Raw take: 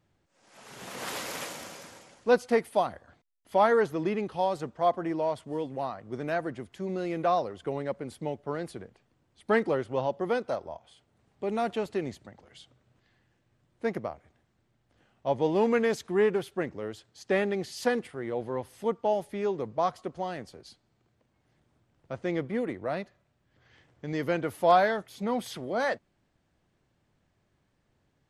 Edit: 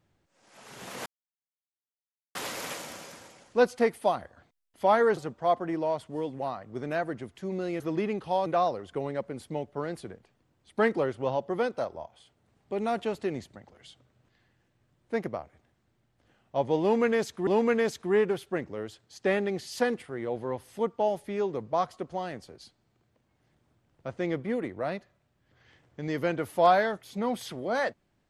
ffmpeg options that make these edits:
-filter_complex "[0:a]asplit=6[a][b][c][d][e][f];[a]atrim=end=1.06,asetpts=PTS-STARTPTS,afade=t=out:st=1.056:d=0.004:c=hsin,apad=pad_dur=1.29[g];[b]atrim=start=1.06:end=3.882,asetpts=PTS-STARTPTS,afade=t=in:d=0.004:c=hsin[h];[c]atrim=start=4.538:end=7.172[i];[d]atrim=start=3.878:end=4.542[j];[e]atrim=start=7.168:end=16.182[k];[f]atrim=start=15.518[l];[g][h]concat=n=2:v=0:a=1[m];[m][i]acrossfade=d=0.004:c1=hsin:c2=hsin[n];[n][j]acrossfade=d=0.004:c1=hsin:c2=hsin[o];[o][k]acrossfade=d=0.004:c1=hsin:c2=hsin[p];[p][l]acrossfade=d=0.004:c1=hsin:c2=hsin"

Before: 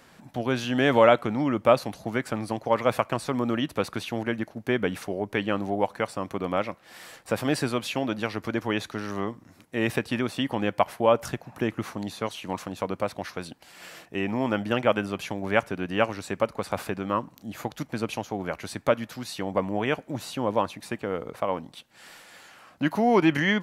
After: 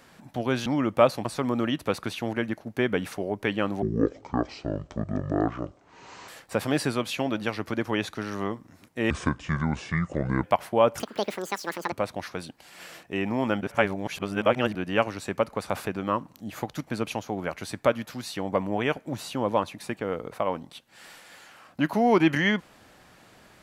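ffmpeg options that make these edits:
-filter_complex "[0:a]asplit=11[a][b][c][d][e][f][g][h][i][j][k];[a]atrim=end=0.662[l];[b]atrim=start=1.338:end=1.932[m];[c]atrim=start=3.148:end=5.724[n];[d]atrim=start=5.72:end=7.05,asetpts=PTS-STARTPTS,asetrate=23814,aresample=44100[o];[e]atrim=start=7.046:end=9.874[p];[f]atrim=start=9.87:end=10.71,asetpts=PTS-STARTPTS,asetrate=27783,aresample=44100[q];[g]atrim=start=10.706:end=11.274[r];[h]atrim=start=11.27:end=12.94,asetpts=PTS-STARTPTS,asetrate=79821,aresample=44100[s];[i]atrim=start=12.936:end=14.632[t];[j]atrim=start=14.628:end=15.772,asetpts=PTS-STARTPTS,areverse[u];[k]atrim=start=15.768[v];[l][m]acrossfade=d=0.004:c1=hsin:c2=hsin[w];[w][n]acrossfade=d=0.004:c1=hsin:c2=hsin[x];[x][o]acrossfade=d=0.004:c1=hsin:c2=hsin[y];[y][p]acrossfade=d=0.004:c1=hsin:c2=hsin[z];[z][q]acrossfade=d=0.004:c1=hsin:c2=hsin[aa];[aa][r]acrossfade=d=0.004:c1=hsin:c2=hsin[ab];[ab][s]acrossfade=d=0.004:c1=hsin:c2=hsin[ac];[ac][t]acrossfade=d=0.004:c1=hsin:c2=hsin[ad];[ad][u]acrossfade=d=0.004:c1=hsin:c2=hsin[ae];[ae][v]acrossfade=d=0.004:c1=hsin:c2=hsin"

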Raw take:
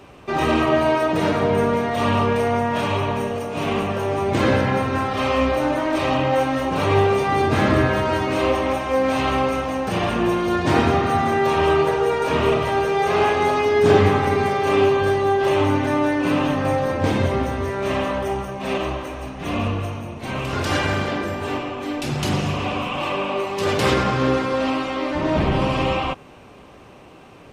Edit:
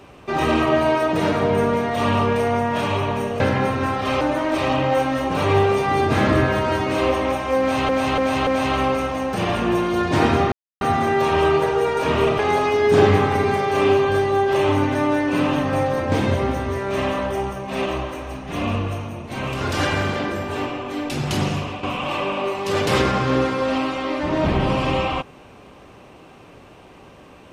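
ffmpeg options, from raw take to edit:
-filter_complex "[0:a]asplit=9[a][b][c][d][e][f][g][h][i];[a]atrim=end=3.402[j];[b]atrim=start=4.518:end=5.332[k];[c]atrim=start=5.618:end=9.302[l];[d]atrim=start=9.008:end=9.302[m];[e]atrim=start=9.008:end=9.302[n];[f]atrim=start=9.008:end=11.06,asetpts=PTS-STARTPTS,afade=t=out:st=2.048:d=0.004:c=hsin,apad=pad_dur=0.29[o];[g]atrim=start=11.06:end=12.642,asetpts=PTS-STARTPTS,afade=t=in:d=0.004:c=hsin[p];[h]atrim=start=13.308:end=22.75,asetpts=PTS-STARTPTS,afade=t=out:st=9.112:d=0.33:silence=0.316228[q];[i]atrim=start=22.75,asetpts=PTS-STARTPTS,afade=t=in:d=0.004:c=hsin:silence=0.316228[r];[j][k]acrossfade=d=0.004:c1=hsin:c2=hsin[s];[s][l]acrossfade=d=0.004:c1=hsin:c2=hsin[t];[t][m]acrossfade=d=0.004:c1=hsin:c2=hsin[u];[u][n]acrossfade=d=0.004:c1=hsin:c2=hsin[v];[o][p]concat=n=2:v=0:a=1[w];[v][w]acrossfade=d=0.004:c1=hsin:c2=hsin[x];[q][r]concat=n=2:v=0:a=1[y];[x][y]acrossfade=d=0.004:c1=hsin:c2=hsin"

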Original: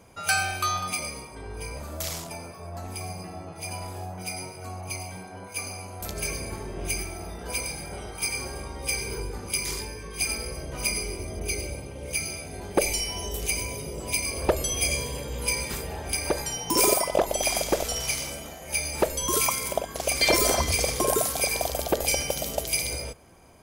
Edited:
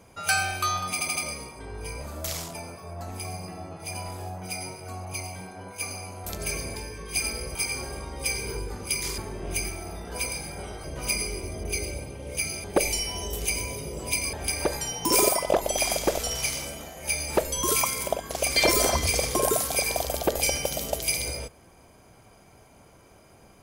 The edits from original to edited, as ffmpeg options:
-filter_complex "[0:a]asplit=10[a][b][c][d][e][f][g][h][i][j];[a]atrim=end=1.012[k];[b]atrim=start=0.928:end=1.012[l];[c]atrim=start=0.928:end=1.012[m];[d]atrim=start=0.928:end=6.522[n];[e]atrim=start=9.808:end=10.602[o];[f]atrim=start=8.178:end=9.812[p];[g]atrim=start=6.518:end=8.182[q];[h]atrim=start=10.598:end=12.402[r];[i]atrim=start=12.648:end=14.342[s];[j]atrim=start=15.978[t];[k][l]acrossfade=d=0.004:c1=hsin:c2=hsin[u];[u][m]acrossfade=d=0.004:c1=hsin:c2=hsin[v];[v][n]acrossfade=d=0.004:c1=hsin:c2=hsin[w];[w][o]acrossfade=d=0.004:c1=hsin:c2=hsin[x];[x][p]acrossfade=d=0.004:c1=hsin:c2=hsin[y];[y][q]acrossfade=d=0.004:c1=hsin:c2=hsin[z];[z][r]acrossfade=d=0.004:c1=hsin:c2=hsin[aa];[aa][s]acrossfade=d=0.004:c1=hsin:c2=hsin[ab];[ab][t]acrossfade=d=0.004:c1=hsin:c2=hsin"

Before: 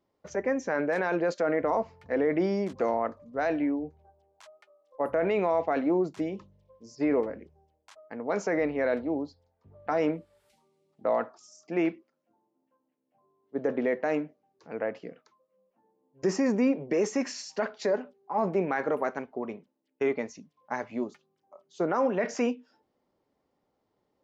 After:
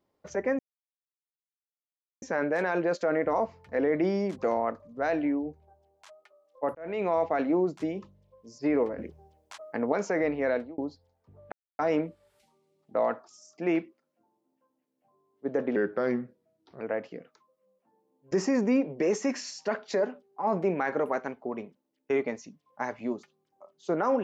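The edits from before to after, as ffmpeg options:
-filter_complex "[0:a]asplit=9[a][b][c][d][e][f][g][h][i];[a]atrim=end=0.59,asetpts=PTS-STARTPTS,afade=t=out:st=0.586:d=0.004:c=hsin,apad=pad_dur=1.63[j];[b]atrim=start=0.59:end=5.12,asetpts=PTS-STARTPTS,afade=t=in:d=0.004:c=hsin,afade=t=out:st=4.526:d=0.004:c=hsin[k];[c]atrim=start=5.12:end=7.352,asetpts=PTS-STARTPTS,afade=t=in:d=0.38[l];[d]atrim=start=7.348:end=8.292,asetpts=PTS-STARTPTS,volume=8dB[m];[e]atrim=start=8.288:end=9.15,asetpts=PTS-STARTPTS,afade=t=out:st=0.602:d=0.26[n];[f]atrim=start=9.15:end=9.89,asetpts=PTS-STARTPTS,afade=t=in:d=0.004:c=hsin,afade=t=out:st=0.736:d=0.004:c=hsin,apad=pad_dur=0.27[o];[g]atrim=start=9.89:end=13.864,asetpts=PTS-STARTPTS,afade=t=in:d=0.004:c=hsin[p];[h]atrim=start=13.86:end=14.72,asetpts=PTS-STARTPTS,asetrate=36162,aresample=44100,atrim=end_sample=46251,asetpts=PTS-STARTPTS[q];[i]atrim=start=14.716[r];[j][k][l]concat=n=3:v=0:a=1[s];[s][m]acrossfade=d=0.004:c1=hsin:c2=hsin[t];[n][o][p]concat=n=3:v=0:a=1[u];[t][u]acrossfade=d=0.004:c1=hsin:c2=hsin[v];[v][q]acrossfade=d=0.004:c1=hsin:c2=hsin[w];[w][r]acrossfade=d=0.004:c1=hsin:c2=hsin"

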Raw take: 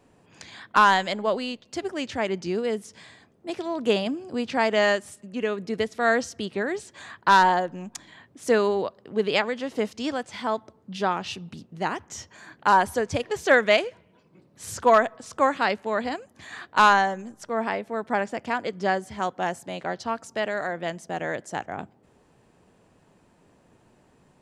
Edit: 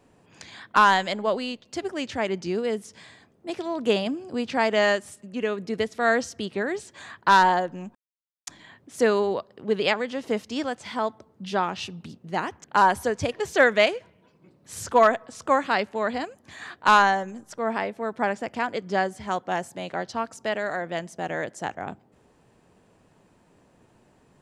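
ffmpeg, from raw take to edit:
-filter_complex "[0:a]asplit=3[a][b][c];[a]atrim=end=7.95,asetpts=PTS-STARTPTS,afade=t=out:st=7.946:d=0.004:c=hsin,apad=pad_dur=0.52[d];[b]atrim=start=7.95:end=12.122,asetpts=PTS-STARTPTS,afade=t=in:d=0.004:c=hsin[e];[c]atrim=start=12.548[f];[d][e]concat=n=2:v=0:a=1[g];[g][f]acrossfade=d=0.004:c1=hsin:c2=hsin"

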